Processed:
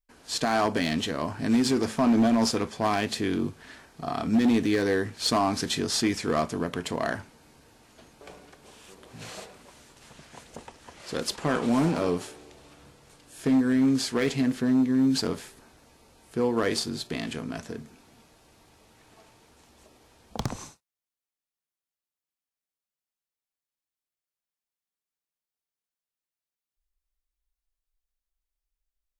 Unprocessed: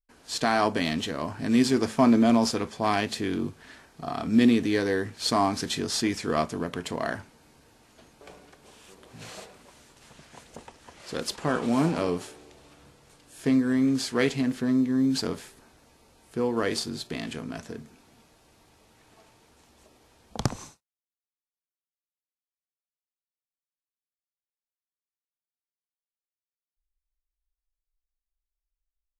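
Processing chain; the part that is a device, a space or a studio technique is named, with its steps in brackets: limiter into clipper (limiter -13.5 dBFS, peak gain reduction 6 dB; hard clip -18.5 dBFS, distortion -17 dB); gain +1.5 dB

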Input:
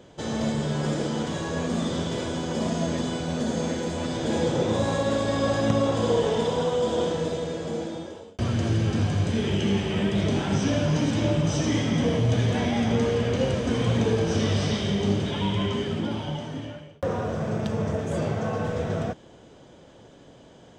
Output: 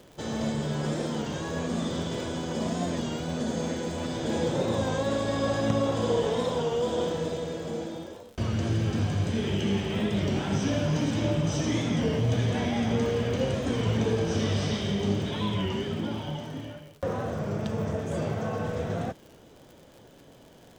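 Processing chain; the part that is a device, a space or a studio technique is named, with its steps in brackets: warped LP (record warp 33 1/3 rpm, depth 100 cents; crackle 91/s -39 dBFS; pink noise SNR 38 dB); gain -3 dB

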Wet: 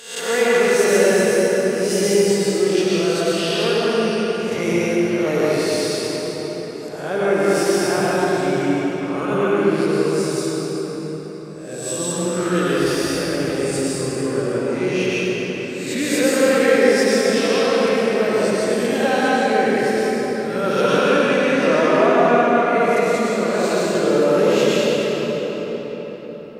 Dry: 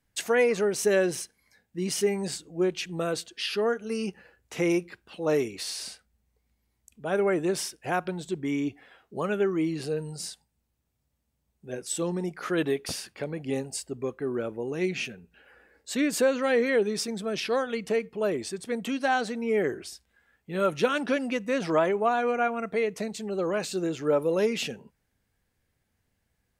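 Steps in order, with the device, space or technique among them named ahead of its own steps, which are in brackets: spectral swells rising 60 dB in 0.64 s; cathedral (reverb RT60 5.3 s, pre-delay 92 ms, DRR -8 dB)

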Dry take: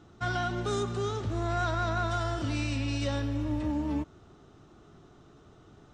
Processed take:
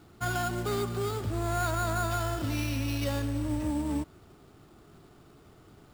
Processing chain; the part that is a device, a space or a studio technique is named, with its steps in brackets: early companding sampler (sample-rate reducer 8300 Hz, jitter 0%; companded quantiser 6-bit)

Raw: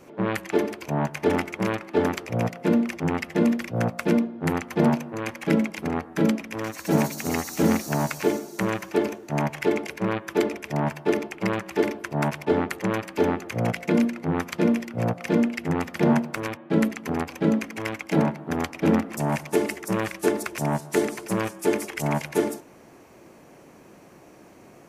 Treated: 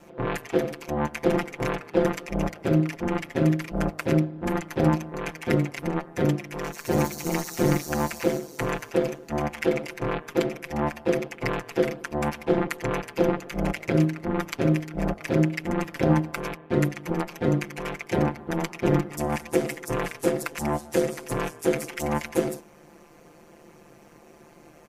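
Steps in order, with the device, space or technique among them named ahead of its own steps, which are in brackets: ring-modulated robot voice (ring modulator 76 Hz; comb 5.8 ms, depth 68%)

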